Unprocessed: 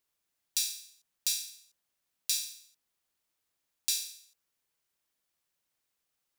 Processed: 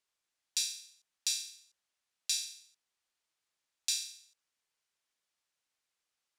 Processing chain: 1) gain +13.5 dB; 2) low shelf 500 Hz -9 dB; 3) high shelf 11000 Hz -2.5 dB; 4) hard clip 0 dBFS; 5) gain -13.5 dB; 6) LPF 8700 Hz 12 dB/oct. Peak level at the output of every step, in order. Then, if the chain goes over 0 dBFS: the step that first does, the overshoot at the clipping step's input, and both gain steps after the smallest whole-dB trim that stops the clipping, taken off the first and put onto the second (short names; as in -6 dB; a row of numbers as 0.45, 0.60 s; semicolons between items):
+4.5, +4.0, +3.0, 0.0, -13.5, -15.0 dBFS; step 1, 3.0 dB; step 1 +10.5 dB, step 5 -10.5 dB